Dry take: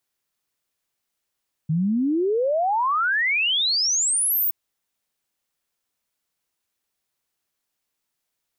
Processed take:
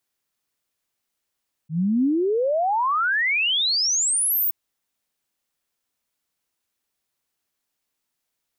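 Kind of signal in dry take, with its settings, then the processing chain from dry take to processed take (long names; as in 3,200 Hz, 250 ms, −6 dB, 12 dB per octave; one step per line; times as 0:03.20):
exponential sine sweep 150 Hz → 16,000 Hz 2.82 s −18.5 dBFS
parametric band 260 Hz +2.5 dB 0.31 octaves
volume swells 103 ms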